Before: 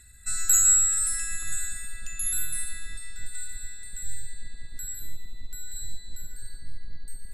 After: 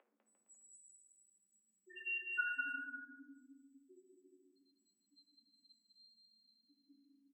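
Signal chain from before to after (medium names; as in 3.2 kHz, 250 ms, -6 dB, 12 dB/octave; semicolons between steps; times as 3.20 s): comb filter that takes the minimum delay 0.78 ms; 2.45–3.31 s: AM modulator 110 Hz, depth 70%; 4.07–4.68 s: compressor with a negative ratio -34 dBFS, ratio -0.5; short-mantissa float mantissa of 2-bit; wow and flutter 20 cents; loudest bins only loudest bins 4; bouncing-ball echo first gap 200 ms, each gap 0.75×, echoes 5; reverberation RT60 0.90 s, pre-delay 4 ms, DRR 1.5 dB; mistuned SSB +150 Hz 280–2800 Hz; trim +13.5 dB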